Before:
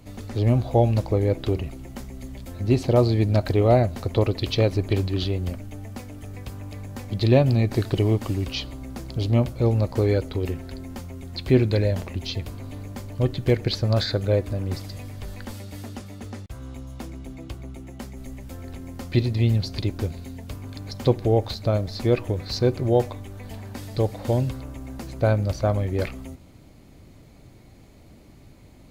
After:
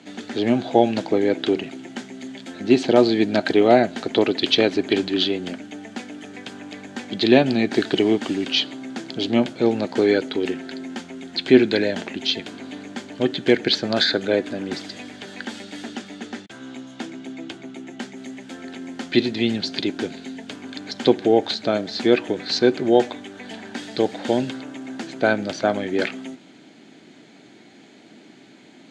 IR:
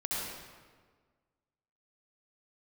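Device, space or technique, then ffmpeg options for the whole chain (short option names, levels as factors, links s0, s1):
television speaker: -af "highpass=f=220:w=0.5412,highpass=f=220:w=1.3066,equalizer=f=540:t=q:w=4:g=-8,equalizer=f=1100:t=q:w=4:g=-9,equalizer=f=1600:t=q:w=4:g=7,equalizer=f=3300:t=q:w=4:g=6,equalizer=f=5300:t=q:w=4:g=-4,lowpass=f=7300:w=0.5412,lowpass=f=7300:w=1.3066,volume=2.37"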